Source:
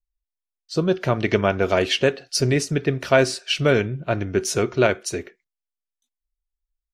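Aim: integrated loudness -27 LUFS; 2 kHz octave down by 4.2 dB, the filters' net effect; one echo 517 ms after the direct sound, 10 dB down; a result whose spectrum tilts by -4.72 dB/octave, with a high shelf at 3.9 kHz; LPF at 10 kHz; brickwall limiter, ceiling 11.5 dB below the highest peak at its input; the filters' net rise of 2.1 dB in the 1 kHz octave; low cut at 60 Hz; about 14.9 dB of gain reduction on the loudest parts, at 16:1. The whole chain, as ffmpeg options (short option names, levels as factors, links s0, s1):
-af "highpass=60,lowpass=10000,equalizer=f=1000:t=o:g=6,equalizer=f=2000:t=o:g=-7.5,highshelf=f=3900:g=-5.5,acompressor=threshold=0.0562:ratio=16,alimiter=limit=0.0708:level=0:latency=1,aecho=1:1:517:0.316,volume=2.24"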